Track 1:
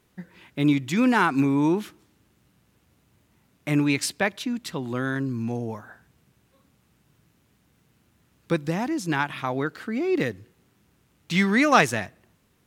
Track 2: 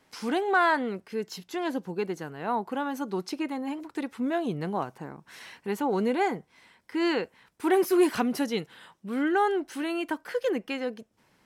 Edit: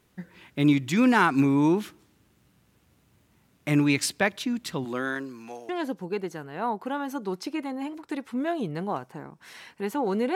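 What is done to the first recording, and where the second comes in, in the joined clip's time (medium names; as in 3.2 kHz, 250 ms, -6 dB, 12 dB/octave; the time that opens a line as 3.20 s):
track 1
4.84–5.69 s: high-pass 210 Hz -> 880 Hz
5.69 s: go over to track 2 from 1.55 s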